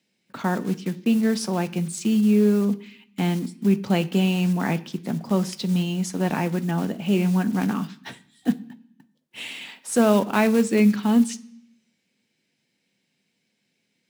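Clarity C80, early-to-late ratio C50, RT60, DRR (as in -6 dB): 21.5 dB, 19.0 dB, 0.70 s, 11.5 dB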